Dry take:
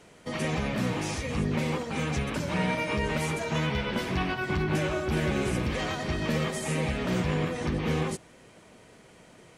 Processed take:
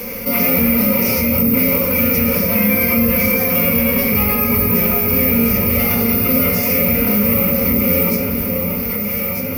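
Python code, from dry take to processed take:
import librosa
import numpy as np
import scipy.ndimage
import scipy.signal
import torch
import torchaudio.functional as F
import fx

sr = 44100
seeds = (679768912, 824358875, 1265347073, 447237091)

y = fx.cvsd(x, sr, bps=64000)
y = fx.high_shelf(y, sr, hz=6600.0, db=-9.5)
y = fx.hum_notches(y, sr, base_hz=60, count=4)
y = fx.rider(y, sr, range_db=4, speed_s=2.0)
y = fx.notch(y, sr, hz=950.0, q=6.4)
y = (np.kron(y[::3], np.eye(3)[0]) * 3)[:len(y)]
y = fx.ripple_eq(y, sr, per_octave=0.84, db=14)
y = fx.echo_alternate(y, sr, ms=619, hz=840.0, feedback_pct=70, wet_db=-7.5)
y = fx.pitch_keep_formants(y, sr, semitones=2.0)
y = fx.room_shoebox(y, sr, seeds[0], volume_m3=880.0, walls='furnished', distance_m=2.0)
y = fx.env_flatten(y, sr, amount_pct=50)
y = y * librosa.db_to_amplitude(4.0)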